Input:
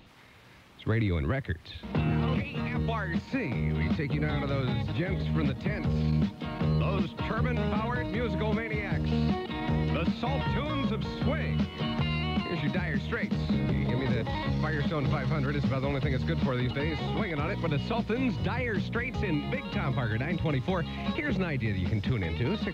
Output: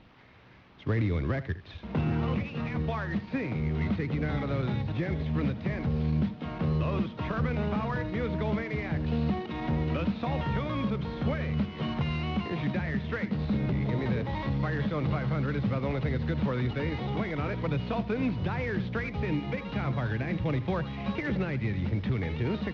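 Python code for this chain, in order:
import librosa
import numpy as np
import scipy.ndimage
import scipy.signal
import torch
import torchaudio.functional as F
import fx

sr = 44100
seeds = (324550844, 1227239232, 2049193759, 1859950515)

y = fx.cvsd(x, sr, bps=32000)
y = fx.air_absorb(y, sr, metres=260.0)
y = y + 10.0 ** (-15.5 / 20.0) * np.pad(y, (int(80 * sr / 1000.0), 0))[:len(y)]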